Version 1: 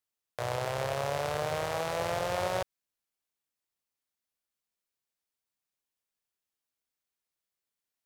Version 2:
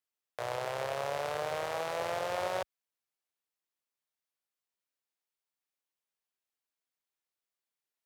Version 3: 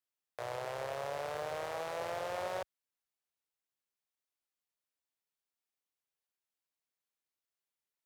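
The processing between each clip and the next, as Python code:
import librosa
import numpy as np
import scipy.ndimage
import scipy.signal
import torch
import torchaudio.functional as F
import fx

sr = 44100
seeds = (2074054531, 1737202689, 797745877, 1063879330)

y1 = scipy.signal.sosfilt(scipy.signal.butter(2, 60.0, 'highpass', fs=sr, output='sos'), x)
y1 = fx.bass_treble(y1, sr, bass_db=-9, treble_db=-3)
y1 = F.gain(torch.from_numpy(y1), -2.0).numpy()
y2 = 10.0 ** (-24.0 / 20.0) * np.tanh(y1 / 10.0 ** (-24.0 / 20.0))
y2 = F.gain(torch.from_numpy(y2), -3.0).numpy()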